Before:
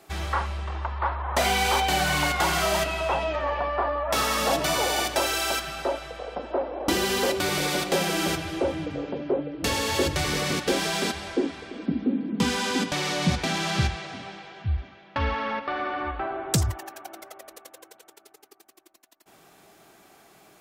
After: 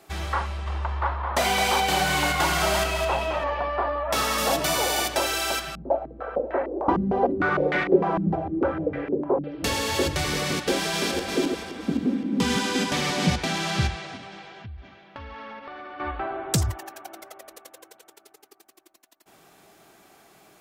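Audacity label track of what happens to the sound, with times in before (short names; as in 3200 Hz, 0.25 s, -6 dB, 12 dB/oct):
0.450000	3.440000	feedback echo 0.213 s, feedback 26%, level -7 dB
4.380000	5.090000	high shelf 8700 Hz +6 dB
5.750000	9.440000	stepped low-pass 6.6 Hz 200–1900 Hz
10.680000	13.360000	regenerating reverse delay 0.259 s, feedback 42%, level -4.5 dB
14.160000	16.000000	compressor 10:1, threshold -36 dBFS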